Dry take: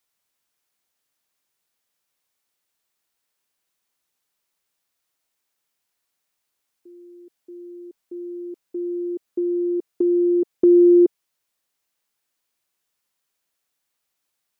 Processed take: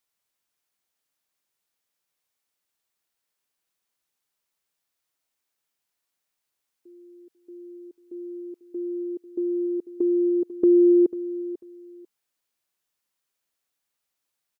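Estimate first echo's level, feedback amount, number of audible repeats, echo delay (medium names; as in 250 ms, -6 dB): -15.0 dB, 21%, 2, 494 ms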